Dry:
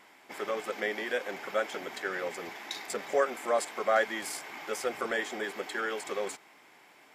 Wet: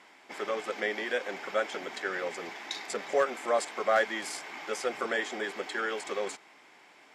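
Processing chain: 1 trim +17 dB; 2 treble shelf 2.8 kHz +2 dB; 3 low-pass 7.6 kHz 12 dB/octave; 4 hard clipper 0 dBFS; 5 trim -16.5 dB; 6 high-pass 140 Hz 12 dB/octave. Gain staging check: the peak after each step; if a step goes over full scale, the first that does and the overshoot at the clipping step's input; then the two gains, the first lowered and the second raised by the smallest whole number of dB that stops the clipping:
+3.5 dBFS, +4.0 dBFS, +4.0 dBFS, 0.0 dBFS, -16.5 dBFS, -15.0 dBFS; step 1, 4.0 dB; step 1 +13 dB, step 5 -12.5 dB

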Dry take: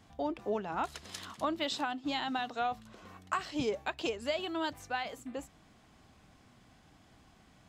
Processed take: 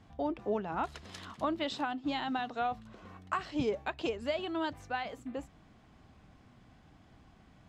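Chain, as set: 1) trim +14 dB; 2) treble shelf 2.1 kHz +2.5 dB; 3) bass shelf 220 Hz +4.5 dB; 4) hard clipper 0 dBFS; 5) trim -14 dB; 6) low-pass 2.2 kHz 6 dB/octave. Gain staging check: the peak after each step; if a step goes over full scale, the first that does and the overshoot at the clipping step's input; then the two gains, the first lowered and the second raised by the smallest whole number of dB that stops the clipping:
-3.5 dBFS, -2.5 dBFS, -2.5 dBFS, -2.5 dBFS, -16.5 dBFS, -17.5 dBFS; nothing clips

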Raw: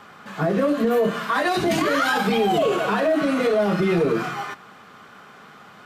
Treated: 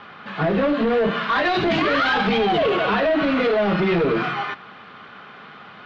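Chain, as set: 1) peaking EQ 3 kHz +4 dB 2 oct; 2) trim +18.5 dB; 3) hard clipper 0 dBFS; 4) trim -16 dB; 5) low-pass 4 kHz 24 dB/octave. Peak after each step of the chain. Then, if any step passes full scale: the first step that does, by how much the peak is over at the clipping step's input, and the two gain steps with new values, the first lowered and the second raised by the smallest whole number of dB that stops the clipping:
-10.0 dBFS, +8.5 dBFS, 0.0 dBFS, -16.0 dBFS, -14.0 dBFS; step 2, 8.5 dB; step 2 +9.5 dB, step 4 -7 dB

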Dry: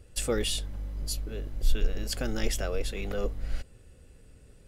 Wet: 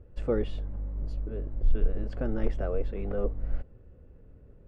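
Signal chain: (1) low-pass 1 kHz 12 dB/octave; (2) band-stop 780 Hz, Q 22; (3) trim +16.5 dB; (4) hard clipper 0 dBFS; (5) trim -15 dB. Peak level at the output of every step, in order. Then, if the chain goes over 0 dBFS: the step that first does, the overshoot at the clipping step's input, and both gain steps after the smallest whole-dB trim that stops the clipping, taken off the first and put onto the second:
-13.5 dBFS, -13.5 dBFS, +3.0 dBFS, 0.0 dBFS, -15.0 dBFS; step 3, 3.0 dB; step 3 +13.5 dB, step 5 -12 dB

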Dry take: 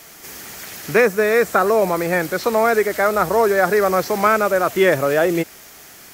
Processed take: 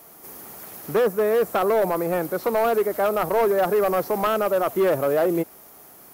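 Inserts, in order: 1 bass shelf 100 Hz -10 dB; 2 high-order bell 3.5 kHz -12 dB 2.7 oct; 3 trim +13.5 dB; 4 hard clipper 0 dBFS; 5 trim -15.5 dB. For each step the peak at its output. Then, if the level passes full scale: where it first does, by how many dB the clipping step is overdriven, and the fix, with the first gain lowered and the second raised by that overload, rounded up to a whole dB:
-3.0 dBFS, -4.5 dBFS, +9.0 dBFS, 0.0 dBFS, -15.5 dBFS; step 3, 9.0 dB; step 3 +4.5 dB, step 5 -6.5 dB

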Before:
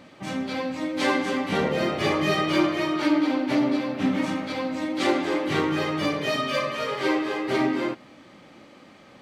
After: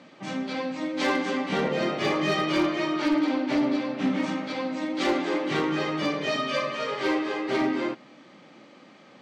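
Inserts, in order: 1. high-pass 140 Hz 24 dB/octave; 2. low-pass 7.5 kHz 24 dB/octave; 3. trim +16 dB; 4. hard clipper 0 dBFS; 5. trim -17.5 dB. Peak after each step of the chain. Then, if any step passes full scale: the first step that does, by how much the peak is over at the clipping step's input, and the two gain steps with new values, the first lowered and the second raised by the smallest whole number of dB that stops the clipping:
-10.5 dBFS, -10.5 dBFS, +5.5 dBFS, 0.0 dBFS, -17.5 dBFS; step 3, 5.5 dB; step 3 +10 dB, step 5 -11.5 dB

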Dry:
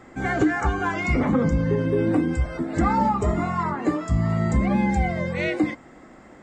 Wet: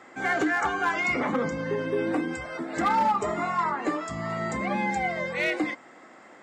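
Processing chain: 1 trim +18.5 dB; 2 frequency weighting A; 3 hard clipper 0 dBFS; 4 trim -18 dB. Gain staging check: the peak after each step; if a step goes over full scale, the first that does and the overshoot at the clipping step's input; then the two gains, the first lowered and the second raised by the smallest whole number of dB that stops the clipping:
+8.5 dBFS, +6.5 dBFS, 0.0 dBFS, -18.0 dBFS; step 1, 6.5 dB; step 1 +11.5 dB, step 4 -11 dB

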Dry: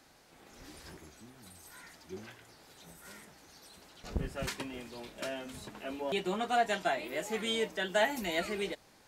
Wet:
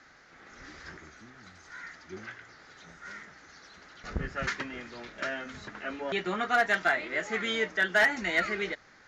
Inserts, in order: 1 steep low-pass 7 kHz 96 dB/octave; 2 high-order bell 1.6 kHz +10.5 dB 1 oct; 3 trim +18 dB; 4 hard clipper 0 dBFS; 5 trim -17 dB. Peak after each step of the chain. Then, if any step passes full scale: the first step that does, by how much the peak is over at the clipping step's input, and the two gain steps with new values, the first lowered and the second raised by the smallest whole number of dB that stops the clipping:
-15.0 dBFS, -12.0 dBFS, +6.0 dBFS, 0.0 dBFS, -17.0 dBFS; step 3, 6.0 dB; step 3 +12 dB, step 5 -11 dB

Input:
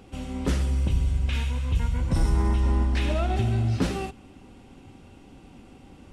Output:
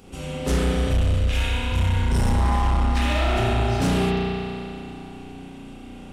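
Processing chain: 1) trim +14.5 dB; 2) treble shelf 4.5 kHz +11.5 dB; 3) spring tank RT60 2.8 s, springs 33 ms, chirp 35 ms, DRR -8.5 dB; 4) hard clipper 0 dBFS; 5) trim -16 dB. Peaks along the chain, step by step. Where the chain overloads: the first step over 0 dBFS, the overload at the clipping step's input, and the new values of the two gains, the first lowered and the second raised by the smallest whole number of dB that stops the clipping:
+2.0 dBFS, +2.5 dBFS, +10.0 dBFS, 0.0 dBFS, -16.0 dBFS; step 1, 10.0 dB; step 1 +4.5 dB, step 5 -6 dB

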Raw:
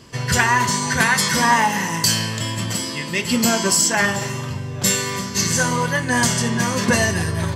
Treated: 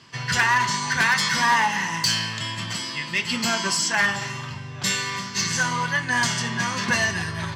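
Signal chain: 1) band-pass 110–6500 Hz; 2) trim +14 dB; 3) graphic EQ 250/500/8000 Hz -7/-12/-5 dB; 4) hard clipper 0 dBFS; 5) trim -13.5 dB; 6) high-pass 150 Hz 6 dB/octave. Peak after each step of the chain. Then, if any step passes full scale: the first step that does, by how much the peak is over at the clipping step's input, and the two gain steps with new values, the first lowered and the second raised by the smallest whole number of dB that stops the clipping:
-4.5 dBFS, +9.5 dBFS, +7.0 dBFS, 0.0 dBFS, -13.5 dBFS, -11.5 dBFS; step 2, 7.0 dB; step 2 +7 dB, step 5 -6.5 dB

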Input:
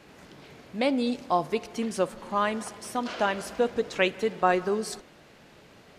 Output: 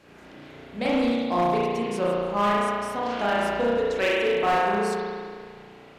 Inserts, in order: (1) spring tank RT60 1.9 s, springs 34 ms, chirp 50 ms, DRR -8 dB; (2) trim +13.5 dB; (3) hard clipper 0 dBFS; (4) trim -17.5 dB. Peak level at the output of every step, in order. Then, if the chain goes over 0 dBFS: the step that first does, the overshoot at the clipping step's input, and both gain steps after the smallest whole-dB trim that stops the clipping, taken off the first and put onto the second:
-4.5 dBFS, +9.0 dBFS, 0.0 dBFS, -17.5 dBFS; step 2, 9.0 dB; step 2 +4.5 dB, step 4 -8.5 dB

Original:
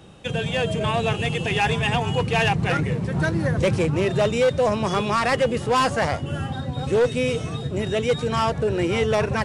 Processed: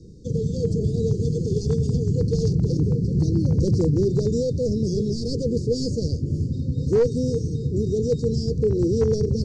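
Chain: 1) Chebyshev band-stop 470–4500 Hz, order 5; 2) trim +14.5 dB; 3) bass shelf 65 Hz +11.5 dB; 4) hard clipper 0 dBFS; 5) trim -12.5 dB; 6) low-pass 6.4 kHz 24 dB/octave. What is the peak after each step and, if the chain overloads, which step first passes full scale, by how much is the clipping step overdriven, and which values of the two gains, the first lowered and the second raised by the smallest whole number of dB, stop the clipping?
-12.0 dBFS, +2.5 dBFS, +4.0 dBFS, 0.0 dBFS, -12.5 dBFS, -12.5 dBFS; step 2, 4.0 dB; step 2 +10.5 dB, step 5 -8.5 dB

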